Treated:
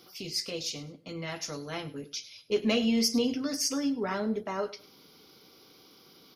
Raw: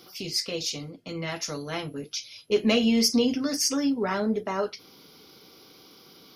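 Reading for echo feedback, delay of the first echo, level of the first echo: 22%, 101 ms, -18.0 dB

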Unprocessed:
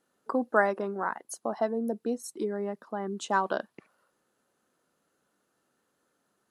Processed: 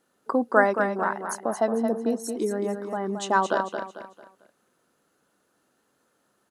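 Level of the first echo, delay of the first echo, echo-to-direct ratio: -7.0 dB, 223 ms, -6.5 dB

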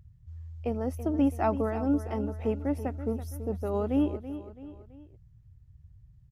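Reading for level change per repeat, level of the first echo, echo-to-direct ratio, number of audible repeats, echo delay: -6.5 dB, -12.5 dB, -11.5 dB, 3, 331 ms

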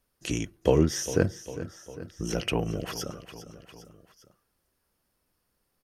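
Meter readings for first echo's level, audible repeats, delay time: -14.0 dB, 3, 402 ms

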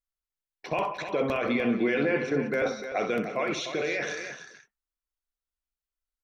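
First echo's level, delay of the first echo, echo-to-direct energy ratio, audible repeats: -9.5 dB, 63 ms, -6.0 dB, 3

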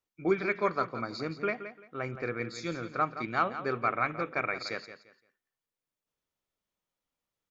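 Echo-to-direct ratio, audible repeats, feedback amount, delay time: -11.0 dB, 2, 24%, 172 ms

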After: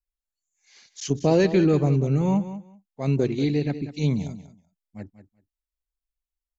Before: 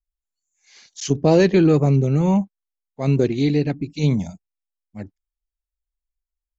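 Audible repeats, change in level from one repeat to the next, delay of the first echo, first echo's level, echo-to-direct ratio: 2, -16.0 dB, 190 ms, -13.0 dB, -13.0 dB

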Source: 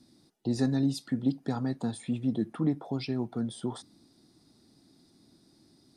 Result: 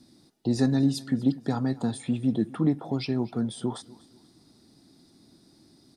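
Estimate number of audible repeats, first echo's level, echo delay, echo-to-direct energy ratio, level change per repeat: 2, -21.0 dB, 245 ms, -20.5 dB, -9.5 dB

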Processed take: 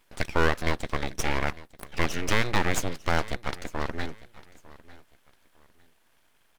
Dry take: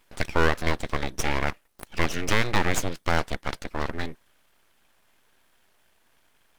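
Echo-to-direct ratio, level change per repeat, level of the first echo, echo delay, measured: -19.5 dB, -11.0 dB, -20.0 dB, 902 ms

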